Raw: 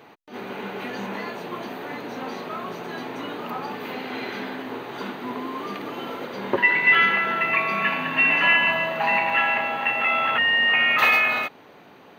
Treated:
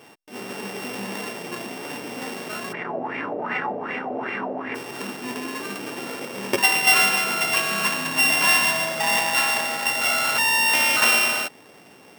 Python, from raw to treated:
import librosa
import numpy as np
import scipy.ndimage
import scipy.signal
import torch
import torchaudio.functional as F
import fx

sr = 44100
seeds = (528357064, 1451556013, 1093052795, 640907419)

y = np.r_[np.sort(x[:len(x) // 16 * 16].reshape(-1, 16), axis=1).ravel(), x[len(x) // 16 * 16:]]
y = fx.filter_lfo_lowpass(y, sr, shape='sine', hz=2.6, low_hz=590.0, high_hz=2200.0, q=5.5, at=(2.72, 4.74), fade=0.02)